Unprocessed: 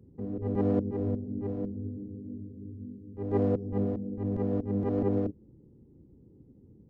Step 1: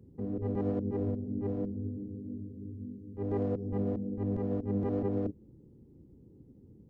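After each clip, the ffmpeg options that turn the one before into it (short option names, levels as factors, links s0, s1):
-af "alimiter=limit=0.0668:level=0:latency=1:release=49"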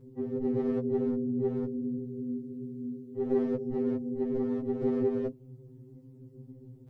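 -af "afftfilt=real='re*2.45*eq(mod(b,6),0)':imag='im*2.45*eq(mod(b,6),0)':win_size=2048:overlap=0.75,volume=2.51"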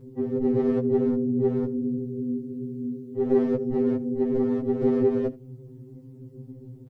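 -af "aecho=1:1:79:0.0891,volume=2.11"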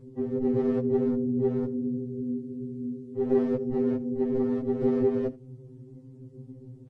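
-af "volume=0.75" -ar 22050 -c:a libvorbis -b:a 32k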